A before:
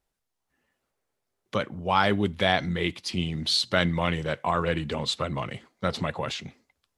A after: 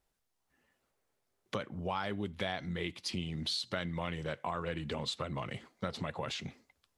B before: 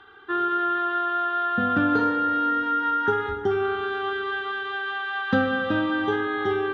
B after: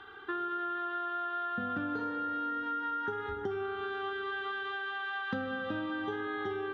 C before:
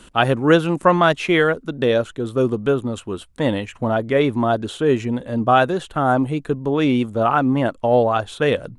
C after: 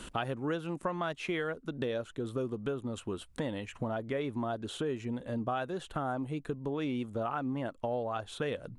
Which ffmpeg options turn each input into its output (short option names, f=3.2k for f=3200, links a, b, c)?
-af "acompressor=threshold=-35dB:ratio=4"